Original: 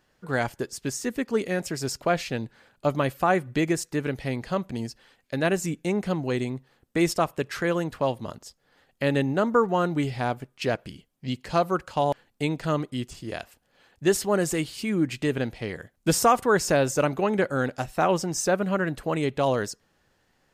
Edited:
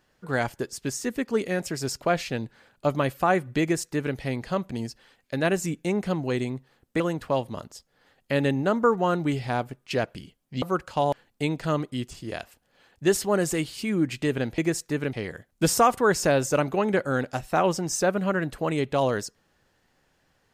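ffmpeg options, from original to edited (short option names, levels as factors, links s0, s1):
-filter_complex "[0:a]asplit=5[s0][s1][s2][s3][s4];[s0]atrim=end=7.002[s5];[s1]atrim=start=7.708:end=11.332[s6];[s2]atrim=start=11.618:end=15.582[s7];[s3]atrim=start=3.608:end=4.162[s8];[s4]atrim=start=15.578[s9];[s5][s6]acrossfade=d=0.004:c1=hsin:c2=hsin[s10];[s10][s7]acrossfade=d=0.004:c1=hsin:c2=hsin[s11];[s11][s8]acrossfade=d=0.004:c1=hsin:c2=hsin[s12];[s12][s9]acrossfade=d=0.004:c1=hsin:c2=hsin"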